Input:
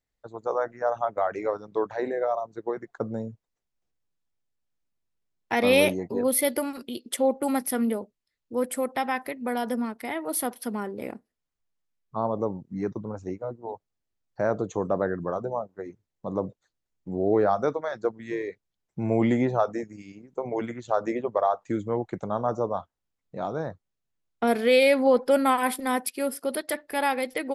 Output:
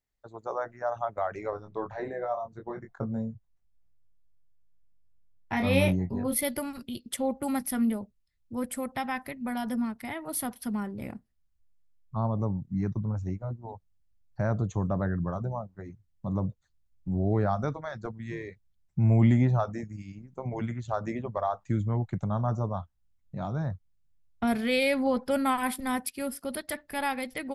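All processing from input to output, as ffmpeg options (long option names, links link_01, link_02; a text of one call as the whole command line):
ffmpeg -i in.wav -filter_complex "[0:a]asettb=1/sr,asplit=3[link_01][link_02][link_03];[link_01]atrim=end=1.504[link_04];[link_02]atrim=start=1.5:end=6.36,asetpts=PTS-STARTPTS,afade=type=in:duration=0.004:curve=qsin,afade=type=out:start_time=4.856:duration=0.004:curve=qsin,highshelf=frequency=2700:gain=-7.5,asplit=2[link_05][link_06];[link_06]adelay=22,volume=-5dB[link_07];[link_05][link_07]amix=inputs=2:normalize=0,atrim=end_sample=214326[link_08];[link_03]atrim=start=6.356[link_09];[link_04][link_08]acrossfade=duration=0.004:curve1=hsin:curve2=qsin[link_10];[link_10][link_09]acrossfade=duration=0.004:curve1=qsin:curve2=hsin,bandreject=frequency=480:width=12,asubboost=boost=10:cutoff=120,volume=-3.5dB" out.wav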